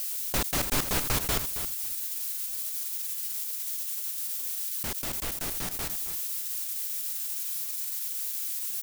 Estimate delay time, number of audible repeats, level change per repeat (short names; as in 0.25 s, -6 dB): 0.272 s, 2, -15.5 dB